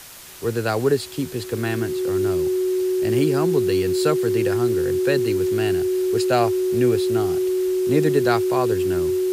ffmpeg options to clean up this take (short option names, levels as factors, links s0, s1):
-af "adeclick=t=4,bandreject=f=370:w=30,afwtdn=0.01"